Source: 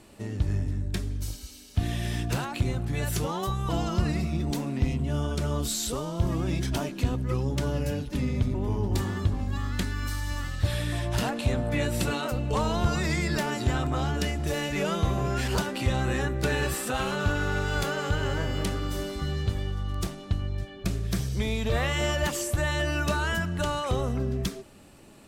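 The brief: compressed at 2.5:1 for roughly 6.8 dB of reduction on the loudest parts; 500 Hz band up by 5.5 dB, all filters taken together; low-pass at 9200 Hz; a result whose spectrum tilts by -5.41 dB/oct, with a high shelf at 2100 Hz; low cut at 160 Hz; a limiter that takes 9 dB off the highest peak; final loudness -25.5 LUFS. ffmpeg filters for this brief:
-af "highpass=160,lowpass=9.2k,equalizer=f=500:t=o:g=7.5,highshelf=f=2.1k:g=-6.5,acompressor=threshold=-31dB:ratio=2.5,volume=11.5dB,alimiter=limit=-16.5dB:level=0:latency=1"

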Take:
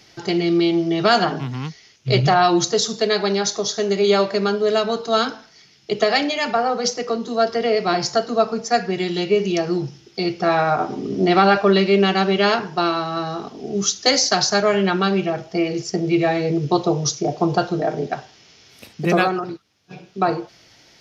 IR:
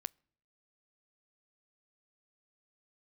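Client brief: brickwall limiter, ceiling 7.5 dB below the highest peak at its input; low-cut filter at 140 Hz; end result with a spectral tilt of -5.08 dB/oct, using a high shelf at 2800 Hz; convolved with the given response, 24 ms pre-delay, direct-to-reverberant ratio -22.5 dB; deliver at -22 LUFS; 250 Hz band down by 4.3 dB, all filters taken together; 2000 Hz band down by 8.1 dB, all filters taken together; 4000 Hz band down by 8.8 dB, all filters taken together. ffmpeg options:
-filter_complex "[0:a]highpass=140,equalizer=f=250:t=o:g=-6,equalizer=f=2k:t=o:g=-7.5,highshelf=f=2.8k:g=-6.5,equalizer=f=4k:t=o:g=-3.5,alimiter=limit=-14dB:level=0:latency=1,asplit=2[a][b];[1:a]atrim=start_sample=2205,adelay=24[c];[b][c]afir=irnorm=-1:irlink=0,volume=25.5dB[d];[a][d]amix=inputs=2:normalize=0,volume=-19.5dB"

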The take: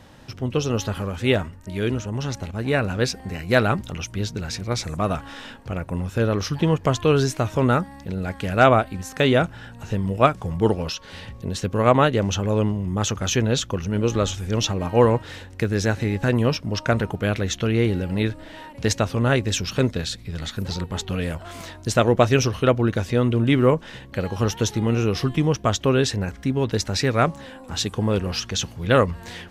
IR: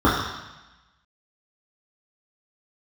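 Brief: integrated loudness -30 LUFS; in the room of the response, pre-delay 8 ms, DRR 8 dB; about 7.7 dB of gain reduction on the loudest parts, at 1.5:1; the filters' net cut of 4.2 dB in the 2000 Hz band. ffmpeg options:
-filter_complex "[0:a]equalizer=f=2k:t=o:g=-6,acompressor=threshold=-33dB:ratio=1.5,asplit=2[a][b];[1:a]atrim=start_sample=2205,adelay=8[c];[b][c]afir=irnorm=-1:irlink=0,volume=-30.5dB[d];[a][d]amix=inputs=2:normalize=0,volume=-2.5dB"

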